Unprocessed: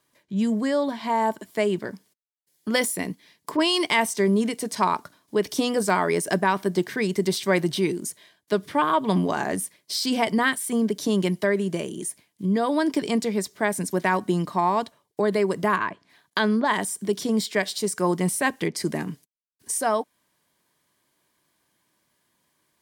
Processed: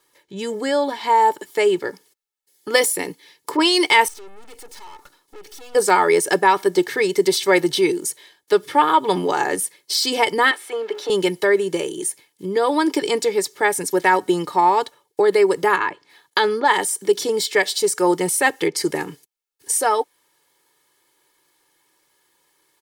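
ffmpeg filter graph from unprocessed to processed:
ffmpeg -i in.wav -filter_complex "[0:a]asettb=1/sr,asplit=3[link_01][link_02][link_03];[link_01]atrim=end=4.084[link_04];[link_02]atrim=start=4.08:end=5.75,asetpts=PTS-STARTPTS,afade=type=in:duration=0.004:curve=qsin,afade=type=out:start_time=1.666:duration=0.004:curve=qsin,acompressor=threshold=-32dB:ratio=5:attack=3.2:release=140:knee=1:detection=peak,aeval=exprs='(tanh(200*val(0)+0.75)-tanh(0.75))/200':channel_layout=same[link_05];[link_03]atrim=start=5.746[link_06];[link_04][link_05]acrossfade=duration=0.004:curve1=hsin:curve2=qsin[link_07];[link_07][link_06]acrossfade=duration=0.004:curve1=qsin:curve2=hsin,asettb=1/sr,asplit=3[link_08][link_09][link_10];[link_08]atrim=end=10.514[link_11];[link_09]atrim=start=10.51:end=11.1,asetpts=PTS-STARTPTS,afade=type=in:duration=0.004:curve=qsin,afade=type=out:start_time=0.586:duration=0.004:curve=qsin,aeval=exprs='val(0)+0.5*0.0112*sgn(val(0))':channel_layout=same,acrossover=split=420 3700:gain=0.0708 1 0.112[link_12][link_13][link_14];[link_12][link_13][link_14]amix=inputs=3:normalize=0,bandreject=frequency=60:width_type=h:width=6,bandreject=frequency=120:width_type=h:width=6,bandreject=frequency=180:width_type=h:width=6,bandreject=frequency=240:width_type=h:width=6,bandreject=frequency=300:width_type=h:width=6,bandreject=frequency=360:width_type=h:width=6,bandreject=frequency=420:width_type=h:width=6[link_15];[link_10]atrim=start=11.096[link_16];[link_11][link_15]acrossfade=duration=0.004:curve1=hsin:curve2=qsin[link_17];[link_17][link_16]acrossfade=duration=0.004:curve1=qsin:curve2=hsin,equalizer=frequency=79:width_type=o:width=1.8:gain=-15,aecho=1:1:2.3:0.78,volume=5dB" out.wav

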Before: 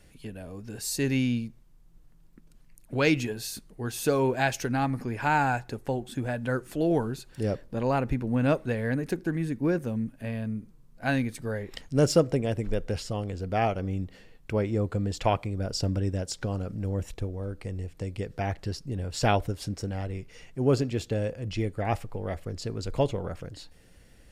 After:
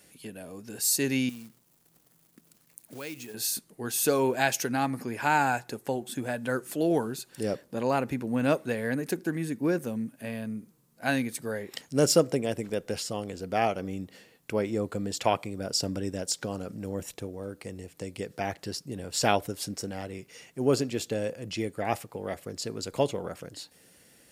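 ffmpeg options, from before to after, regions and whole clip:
ffmpeg -i in.wav -filter_complex "[0:a]asettb=1/sr,asplit=3[link_01][link_02][link_03];[link_01]atrim=end=1.294[link_04];[link_02]atrim=start=1.29:end=3.34,asetpts=PTS-STARTPTS,afade=type=in:duration=0.004:curve=qsin,afade=type=out:start_time=2.046:duration=0.004:curve=qsin,acompressor=threshold=-44dB:ratio=2.5:attack=3.2:release=140:knee=1:detection=peak,acrusher=bits=4:mode=log:mix=0:aa=0.000001[link_05];[link_03]atrim=start=3.336[link_06];[link_04][link_05]acrossfade=duration=0.004:curve1=hsin:curve2=qsin[link_07];[link_07][link_06]acrossfade=duration=0.004:curve1=qsin:curve2=hsin,highpass=180,highshelf=frequency=6400:gain=12" out.wav

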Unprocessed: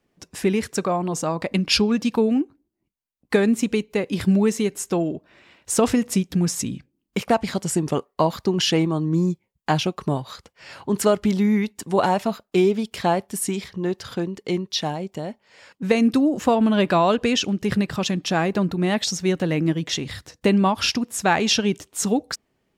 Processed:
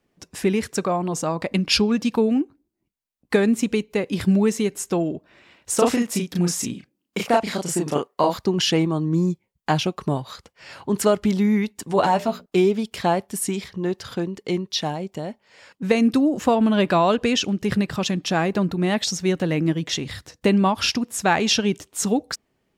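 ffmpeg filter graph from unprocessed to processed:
ffmpeg -i in.wav -filter_complex "[0:a]asettb=1/sr,asplit=3[link_01][link_02][link_03];[link_01]atrim=end=5.754[link_04];[link_02]atrim=start=5.75:end=8.38,asetpts=PTS-STARTPTS,afade=type=in:duration=0.004:curve=qsin,afade=type=out:start_time=2.626:duration=0.004:curve=qsin,deesser=0.4,highpass=frequency=260:poles=1,asplit=2[link_05][link_06];[link_06]adelay=34,volume=-2dB[link_07];[link_05][link_07]amix=inputs=2:normalize=0,atrim=end_sample=115983[link_08];[link_03]atrim=start=8.376[link_09];[link_04][link_08]acrossfade=duration=0.004:curve1=hsin:curve2=qsin[link_10];[link_10][link_09]acrossfade=duration=0.004:curve1=qsin:curve2=hsin,asettb=1/sr,asplit=3[link_11][link_12][link_13];[link_11]atrim=end=11.884[link_14];[link_12]atrim=start=11.88:end=12.46,asetpts=PTS-STARTPTS,afade=type=in:duration=0.004:curve=qsin,afade=type=out:start_time=0.576:duration=0.004:curve=qsin,equalizer=frequency=11000:width_type=o:width=0.33:gain=-5.5,bandreject=frequency=60:width_type=h:width=6,bandreject=frequency=120:width_type=h:width=6,bandreject=frequency=180:width_type=h:width=6,bandreject=frequency=240:width_type=h:width=6,bandreject=frequency=300:width_type=h:width=6,bandreject=frequency=360:width_type=h:width=6,bandreject=frequency=420:width_type=h:width=6,bandreject=frequency=480:width_type=h:width=6,bandreject=frequency=540:width_type=h:width=6,bandreject=frequency=600:width_type=h:width=6,asplit=2[link_15][link_16];[link_16]adelay=12,volume=-6.5dB[link_17];[link_15][link_17]amix=inputs=2:normalize=0,atrim=end_sample=25578[link_18];[link_13]atrim=start=12.456[link_19];[link_14][link_18]acrossfade=duration=0.004:curve1=hsin:curve2=qsin[link_20];[link_20][link_19]acrossfade=duration=0.004:curve1=qsin:curve2=hsin" out.wav

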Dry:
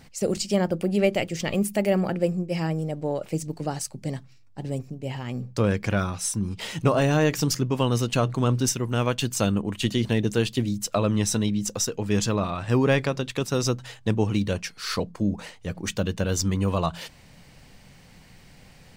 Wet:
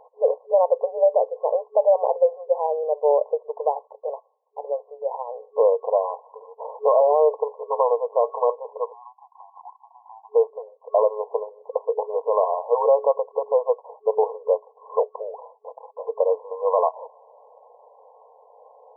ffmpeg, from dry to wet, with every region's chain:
ffmpeg -i in.wav -filter_complex "[0:a]asettb=1/sr,asplit=3[link_01][link_02][link_03];[link_01]atrim=end=8.924[link_04];[link_02]atrim=start=8.92:end=10.35,asetpts=PTS-STARTPTS,afade=type=in:duration=0.004:curve=qsin,afade=type=out:start_time=1.426:duration=0.004:curve=qsin,asuperpass=centerf=1100:order=20:qfactor=1.2,acompressor=threshold=-46dB:ratio=16:attack=3.2:release=140:knee=1:detection=peak[link_05];[link_03]atrim=start=10.346[link_06];[link_04][link_05]acrossfade=duration=0.004:curve1=hsin:curve2=qsin[link_07];[link_07][link_06]acrossfade=duration=0.004:curve1=qsin:curve2=hsin,asettb=1/sr,asplit=3[link_08][link_09][link_10];[link_08]atrim=end=15.394[link_11];[link_09]atrim=start=15.39:end=16.09,asetpts=PTS-STARTPTS,afade=type=in:duration=0.004:curve=qsin,afade=type=out:start_time=0.696:duration=0.004:curve=qsin,aeval=exprs='(tanh(39.8*val(0)+0.65)-tanh(0.65))/39.8':channel_layout=same,highpass=frequency=780:poles=1,aecho=1:1:6:0.41,atrim=end_sample=30870[link_12];[link_10]atrim=start=16.086[link_13];[link_11][link_12]acrossfade=duration=0.004:curve1=hsin:curve2=qsin[link_14];[link_14][link_13]acrossfade=duration=0.004:curve1=qsin:curve2=hsin,afftfilt=real='re*between(b*sr/4096,420,1100)':imag='im*between(b*sr/4096,420,1100)':win_size=4096:overlap=0.75,alimiter=level_in=19dB:limit=-1dB:release=50:level=0:latency=1,volume=-8dB" out.wav

